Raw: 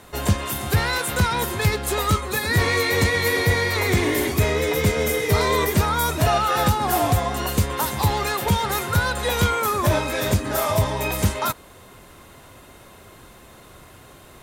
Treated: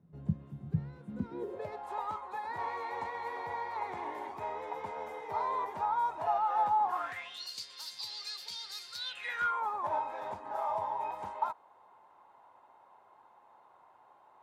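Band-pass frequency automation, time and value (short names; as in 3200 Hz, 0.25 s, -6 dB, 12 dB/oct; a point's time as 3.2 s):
band-pass, Q 8.2
1 s 160 Hz
1.84 s 880 Hz
6.88 s 880 Hz
7.45 s 4600 Hz
8.96 s 4600 Hz
9.63 s 880 Hz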